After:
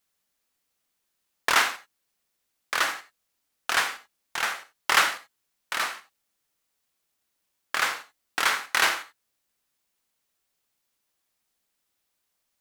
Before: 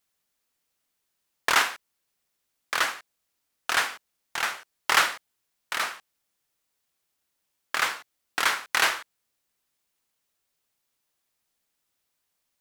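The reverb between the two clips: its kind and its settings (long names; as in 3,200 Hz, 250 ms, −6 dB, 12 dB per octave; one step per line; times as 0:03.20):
reverb whose tail is shaped and stops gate 110 ms flat, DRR 9 dB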